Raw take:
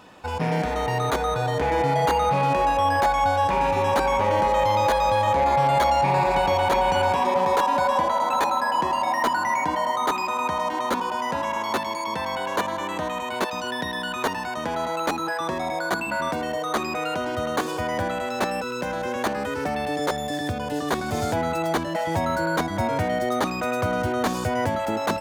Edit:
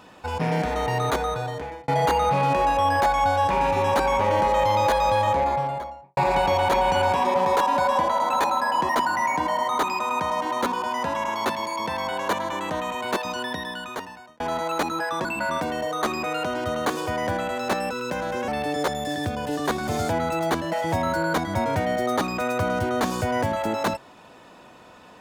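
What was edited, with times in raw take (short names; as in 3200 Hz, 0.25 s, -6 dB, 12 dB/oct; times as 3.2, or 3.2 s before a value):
1.14–1.88 fade out
5.16–6.17 studio fade out
8.89–9.17 cut
13.63–14.68 fade out
15.53–15.96 cut
19.19–19.71 cut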